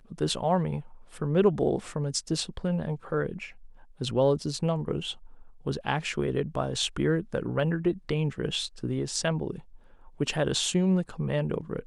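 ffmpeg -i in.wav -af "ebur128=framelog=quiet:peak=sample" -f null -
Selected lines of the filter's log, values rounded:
Integrated loudness:
  I:         -28.8 LUFS
  Threshold: -39.2 LUFS
Loudness range:
  LRA:         1.9 LU
  Threshold: -49.5 LUFS
  LRA low:   -30.5 LUFS
  LRA high:  -28.5 LUFS
Sample peak:
  Peak:      -10.0 dBFS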